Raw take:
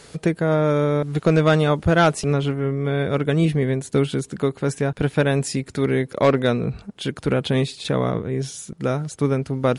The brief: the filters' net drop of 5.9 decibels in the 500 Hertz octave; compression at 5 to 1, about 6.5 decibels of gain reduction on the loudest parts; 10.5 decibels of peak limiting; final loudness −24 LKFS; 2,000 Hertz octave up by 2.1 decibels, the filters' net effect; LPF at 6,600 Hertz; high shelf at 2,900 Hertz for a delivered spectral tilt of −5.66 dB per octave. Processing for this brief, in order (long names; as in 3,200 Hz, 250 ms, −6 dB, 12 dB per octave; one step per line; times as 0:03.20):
low-pass filter 6,600 Hz
parametric band 500 Hz −7.5 dB
parametric band 2,000 Hz +5 dB
high-shelf EQ 2,900 Hz −4 dB
downward compressor 5 to 1, threshold −21 dBFS
level +8 dB
brickwall limiter −14.5 dBFS